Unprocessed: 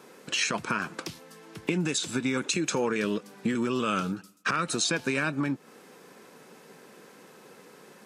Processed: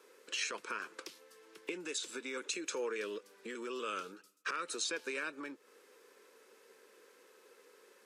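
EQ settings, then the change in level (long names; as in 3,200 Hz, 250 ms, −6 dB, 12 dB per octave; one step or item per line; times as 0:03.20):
four-pole ladder high-pass 380 Hz, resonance 40%
parametric band 710 Hz −13.5 dB 0.67 octaves
−1.0 dB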